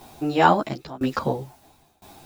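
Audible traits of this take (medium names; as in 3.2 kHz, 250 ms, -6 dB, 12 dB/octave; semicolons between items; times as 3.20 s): a quantiser's noise floor 10-bit, dither triangular; tremolo saw down 0.99 Hz, depth 95%; a shimmering, thickened sound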